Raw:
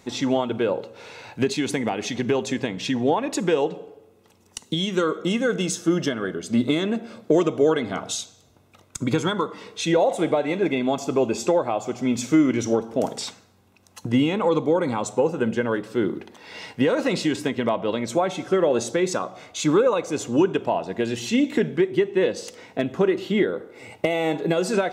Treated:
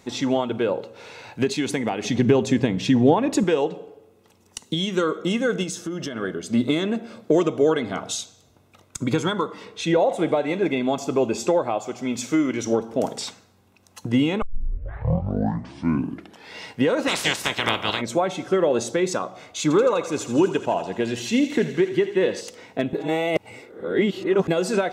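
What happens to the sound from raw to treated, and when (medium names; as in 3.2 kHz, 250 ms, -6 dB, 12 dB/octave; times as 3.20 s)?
2.04–3.44 s: bass shelf 340 Hz +10.5 dB
5.63–6.16 s: compression, threshold -26 dBFS
9.65–10.29 s: tone controls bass +1 dB, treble -5 dB
11.78–12.67 s: bass shelf 320 Hz -6.5 dB
14.42 s: tape start 2.12 s
17.07–18.00 s: spectral peaks clipped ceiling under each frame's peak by 30 dB
19.62–22.41 s: thinning echo 83 ms, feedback 77%, high-pass 780 Hz, level -11 dB
22.93–24.48 s: reverse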